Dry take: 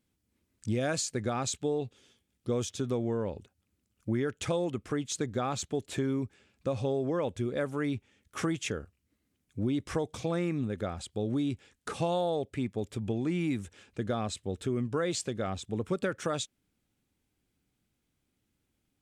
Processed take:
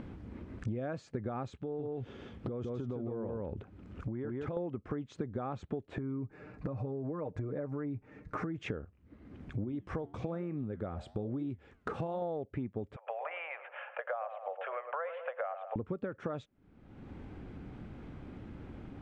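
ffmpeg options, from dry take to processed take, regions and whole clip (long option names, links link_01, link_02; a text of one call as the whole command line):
ffmpeg -i in.wav -filter_complex "[0:a]asettb=1/sr,asplit=3[link_01][link_02][link_03];[link_01]atrim=end=1.614[link_04];[link_02]atrim=start=1.61:end=4.57,asetpts=PTS-STARTPTS,afade=type=in:duration=0.004:curve=qsin,afade=type=out:start_time=2.956:duration=0.004:curve=qsin,aecho=1:1:162:0.668,atrim=end_sample=130536,acompressor=threshold=-47dB:ratio=3:attack=3.2:release=140:knee=1:detection=peak[link_05];[link_03]atrim=start=4.566[link_06];[link_04][link_05]acrossfade=duration=0.004:curve1=hsin:curve2=qsin[link_07];[link_07][link_06]acrossfade=duration=0.004:curve1=qsin:curve2=hsin,asettb=1/sr,asplit=3[link_08][link_09][link_10];[link_08]atrim=end=5.984[link_11];[link_09]atrim=start=5.98:end=8.58,asetpts=PTS-STARTPTS,afade=type=in:duration=0.004:curve=qsin,afade=type=out:start_time=2.596:duration=0.004:curve=qsin,equalizer=frequency=3200:width=3.6:gain=-13.5,aecho=1:1:6.6:0.65,atrim=end_sample=114660,acompressor=threshold=-42dB:ratio=2:attack=3.2:release=140:knee=1:detection=peak[link_12];[link_10]atrim=start=8.576[link_13];[link_11][link_12]acrossfade=duration=0.004:curve1=hsin:curve2=qsin[link_14];[link_14][link_13]acrossfade=duration=0.004:curve1=qsin:curve2=hsin,asettb=1/sr,asplit=3[link_15][link_16][link_17];[link_15]atrim=end=9.644[link_18];[link_16]atrim=start=9.64:end=12.22,asetpts=PTS-STARTPTS,afade=type=in:duration=0.004:curve=qsin,afade=type=out:start_time=2.576:duration=0.004:curve=qsin,equalizer=frequency=9400:width=0.71:gain=7,flanger=delay=4:depth=8.5:regen=-84:speed=1.1:shape=triangular[link_19];[link_17]atrim=start=12.216[link_20];[link_18][link_19]acrossfade=duration=0.004:curve1=hsin:curve2=qsin[link_21];[link_21][link_20]acrossfade=duration=0.004:curve1=qsin:curve2=hsin,asettb=1/sr,asplit=3[link_22][link_23][link_24];[link_22]atrim=end=12.964[link_25];[link_23]atrim=start=12.96:end=15.76,asetpts=PTS-STARTPTS,afade=type=in:duration=0.004:curve=qsin,afade=type=out:start_time=2.796:duration=0.004:curve=qsin,asuperpass=centerf=1300:order=20:qfactor=0.51,asplit=2[link_26][link_27];[link_27]adelay=106,lowpass=frequency=1100:poles=1,volume=-9.5dB,asplit=2[link_28][link_29];[link_29]adelay=106,lowpass=frequency=1100:poles=1,volume=0.39,asplit=2[link_30][link_31];[link_31]adelay=106,lowpass=frequency=1100:poles=1,volume=0.39,asplit=2[link_32][link_33];[link_33]adelay=106,lowpass=frequency=1100:poles=1,volume=0.39[link_34];[link_26][link_28][link_30][link_32][link_34]amix=inputs=5:normalize=0,atrim=end_sample=123480[link_35];[link_24]atrim=start=15.756[link_36];[link_25][link_35]acrossfade=duration=0.004:curve1=hsin:curve2=qsin[link_37];[link_37][link_36]acrossfade=duration=0.004:curve1=qsin:curve2=hsin,acompressor=mode=upward:threshold=-36dB:ratio=2.5,lowpass=1300,acompressor=threshold=-44dB:ratio=10,volume=10dB" out.wav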